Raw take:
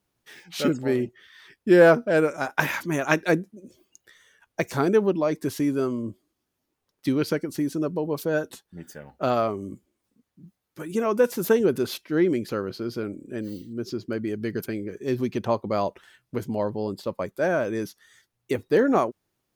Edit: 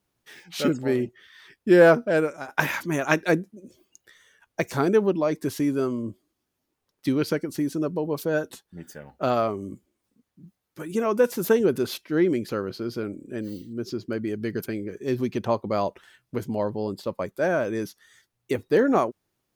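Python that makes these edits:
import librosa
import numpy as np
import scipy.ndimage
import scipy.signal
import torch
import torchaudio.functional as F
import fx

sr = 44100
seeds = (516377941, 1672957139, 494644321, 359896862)

y = fx.edit(x, sr, fx.fade_out_to(start_s=2.09, length_s=0.39, floor_db=-10.5), tone=tone)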